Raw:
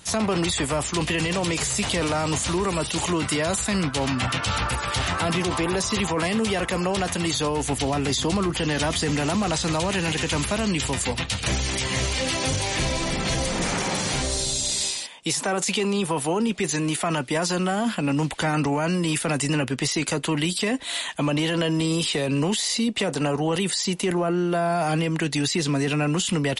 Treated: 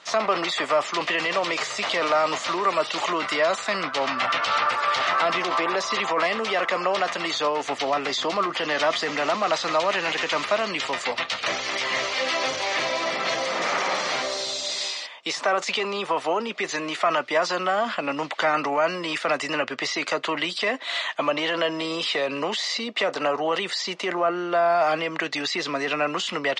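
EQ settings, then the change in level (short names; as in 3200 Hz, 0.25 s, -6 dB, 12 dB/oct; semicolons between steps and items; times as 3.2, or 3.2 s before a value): speaker cabinet 440–5500 Hz, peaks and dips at 620 Hz +7 dB, 1200 Hz +9 dB, 2000 Hz +5 dB; 0.0 dB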